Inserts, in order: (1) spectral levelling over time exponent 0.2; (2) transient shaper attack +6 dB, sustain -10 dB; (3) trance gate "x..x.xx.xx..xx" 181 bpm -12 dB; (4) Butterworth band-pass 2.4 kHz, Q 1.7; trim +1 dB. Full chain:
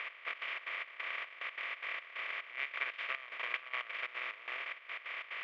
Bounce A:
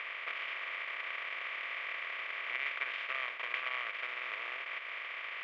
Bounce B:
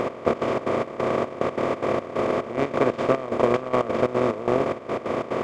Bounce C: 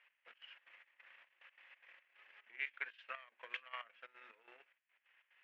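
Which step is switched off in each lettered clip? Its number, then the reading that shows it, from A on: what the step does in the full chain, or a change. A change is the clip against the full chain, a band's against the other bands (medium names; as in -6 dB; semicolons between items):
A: 3, crest factor change -2.5 dB; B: 4, 500 Hz band +30.5 dB; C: 1, 4 kHz band -2.0 dB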